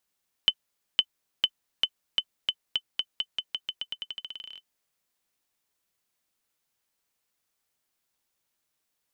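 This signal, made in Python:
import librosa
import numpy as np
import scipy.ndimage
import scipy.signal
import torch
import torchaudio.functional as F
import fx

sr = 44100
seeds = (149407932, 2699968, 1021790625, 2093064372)

y = fx.bouncing_ball(sr, first_gap_s=0.51, ratio=0.88, hz=3040.0, decay_ms=58.0, level_db=-8.0)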